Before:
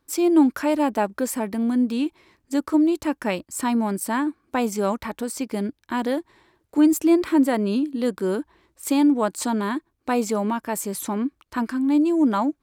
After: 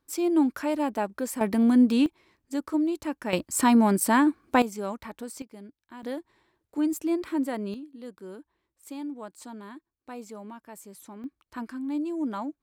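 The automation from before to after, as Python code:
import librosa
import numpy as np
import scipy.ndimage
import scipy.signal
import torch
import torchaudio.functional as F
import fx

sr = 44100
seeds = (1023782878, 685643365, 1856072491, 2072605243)

y = fx.gain(x, sr, db=fx.steps((0.0, -6.0), (1.41, 2.0), (2.06, -7.0), (3.33, 3.0), (4.62, -9.5), (5.42, -19.0), (6.03, -9.5), (7.74, -18.0), (11.24, -11.0)))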